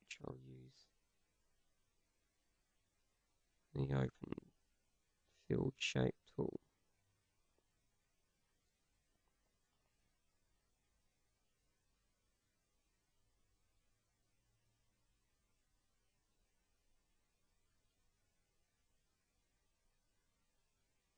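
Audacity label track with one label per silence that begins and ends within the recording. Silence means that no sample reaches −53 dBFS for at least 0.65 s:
0.620000	3.750000	silence
4.430000	5.500000	silence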